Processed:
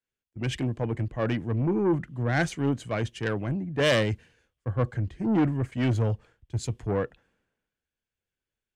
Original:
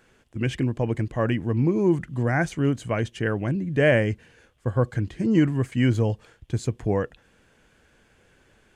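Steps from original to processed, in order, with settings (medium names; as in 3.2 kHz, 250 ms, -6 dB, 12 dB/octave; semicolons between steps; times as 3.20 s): treble shelf 6.8 kHz -5 dB; saturation -21 dBFS, distortion -10 dB; three bands expanded up and down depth 100%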